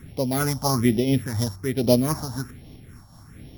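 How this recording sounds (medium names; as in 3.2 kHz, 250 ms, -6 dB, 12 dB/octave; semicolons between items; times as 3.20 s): a buzz of ramps at a fixed pitch in blocks of 8 samples; phasing stages 4, 1.2 Hz, lowest notch 380–1400 Hz; random flutter of the level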